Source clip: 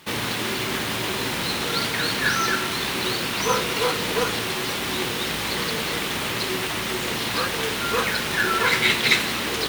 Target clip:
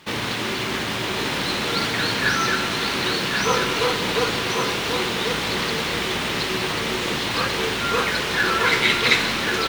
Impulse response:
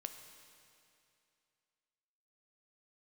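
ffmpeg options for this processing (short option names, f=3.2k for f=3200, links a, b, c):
-filter_complex "[0:a]aecho=1:1:1090:0.562,asplit=2[a][b];[1:a]atrim=start_sample=2205,asetrate=48510,aresample=44100,lowpass=8k[c];[b][c]afir=irnorm=-1:irlink=0,volume=6.5dB[d];[a][d]amix=inputs=2:normalize=0,volume=-6dB"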